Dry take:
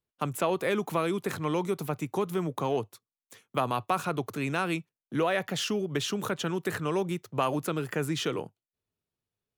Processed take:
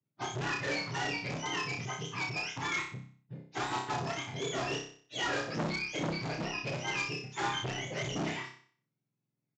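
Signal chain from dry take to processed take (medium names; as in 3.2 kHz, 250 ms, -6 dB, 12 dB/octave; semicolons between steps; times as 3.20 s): spectrum inverted on a logarithmic axis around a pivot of 960 Hz; tone controls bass +1 dB, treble -7 dB; in parallel at -4 dB: integer overflow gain 26 dB; on the sum: frequency shift +29 Hz; on a send: flutter echo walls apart 5.3 m, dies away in 0.48 s; on the sum: resampled via 16 kHz; transformer saturation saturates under 1 kHz; trim -5.5 dB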